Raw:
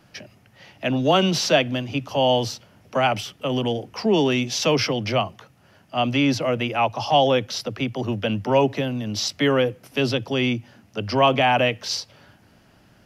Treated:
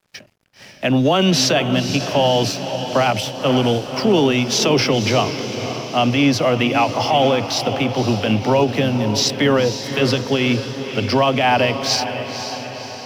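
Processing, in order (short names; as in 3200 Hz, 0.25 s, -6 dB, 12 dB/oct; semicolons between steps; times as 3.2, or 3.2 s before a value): limiter -14.5 dBFS, peak gain reduction 10 dB; crossover distortion -51 dBFS; diffused feedback echo 0.527 s, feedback 58%, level -9 dB; ending taper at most 190 dB/s; gain +7.5 dB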